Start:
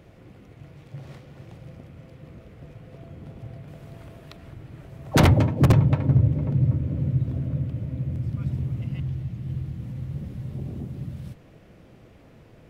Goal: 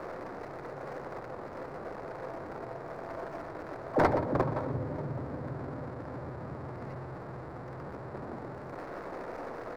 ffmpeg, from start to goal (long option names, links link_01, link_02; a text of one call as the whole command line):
ffmpeg -i in.wav -filter_complex "[0:a]aeval=exprs='val(0)+0.5*0.0376*sgn(val(0))':channel_layout=same,acrossover=split=340 2200:gain=0.1 1 0.0631[link_01][link_02][link_03];[link_01][link_02][link_03]amix=inputs=3:normalize=0,bandreject=frequency=106.8:width_type=h:width=4,bandreject=frequency=213.6:width_type=h:width=4,bandreject=frequency=320.4:width_type=h:width=4,bandreject=frequency=427.2:width_type=h:width=4,bandreject=frequency=534:width_type=h:width=4,bandreject=frequency=640.8:width_type=h:width=4,bandreject=frequency=747.6:width_type=h:width=4,bandreject=frequency=854.4:width_type=h:width=4,bandreject=frequency=961.2:width_type=h:width=4,bandreject=frequency=1068:width_type=h:width=4,bandreject=frequency=1174.8:width_type=h:width=4,bandreject=frequency=1281.6:width_type=h:width=4,bandreject=frequency=1388.4:width_type=h:width=4,bandreject=frequency=1495.2:width_type=h:width=4,bandreject=frequency=1602:width_type=h:width=4,bandreject=frequency=1708.8:width_type=h:width=4,bandreject=frequency=1815.6:width_type=h:width=4,bandreject=frequency=1922.4:width_type=h:width=4,bandreject=frequency=2029.2:width_type=h:width=4,bandreject=frequency=2136:width_type=h:width=4,bandreject=frequency=2242.8:width_type=h:width=4,bandreject=frequency=2349.6:width_type=h:width=4,bandreject=frequency=2456.4:width_type=h:width=4,bandreject=frequency=2563.2:width_type=h:width=4,bandreject=frequency=2670:width_type=h:width=4,bandreject=frequency=2776.8:width_type=h:width=4,acrossover=split=210|2300[link_04][link_05][link_06];[link_06]aeval=exprs='abs(val(0))':channel_layout=same[link_07];[link_04][link_05][link_07]amix=inputs=3:normalize=0,atempo=1.3,highshelf=frequency=4900:gain=-5,asplit=2[link_08][link_09];[link_09]adelay=122.4,volume=-12dB,highshelf=frequency=4000:gain=-2.76[link_10];[link_08][link_10]amix=inputs=2:normalize=0" out.wav